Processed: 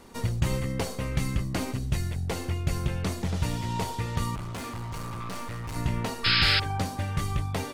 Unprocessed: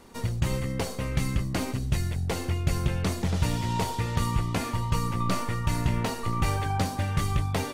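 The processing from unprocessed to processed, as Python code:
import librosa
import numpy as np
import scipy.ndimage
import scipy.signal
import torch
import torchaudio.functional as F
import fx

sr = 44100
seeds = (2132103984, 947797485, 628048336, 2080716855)

y = fx.rider(x, sr, range_db=10, speed_s=2.0)
y = fx.clip_hard(y, sr, threshold_db=-31.0, at=(4.35, 5.76))
y = fx.spec_paint(y, sr, seeds[0], shape='noise', start_s=6.24, length_s=0.36, low_hz=1300.0, high_hz=5300.0, level_db=-21.0)
y = y * librosa.db_to_amplitude(-2.0)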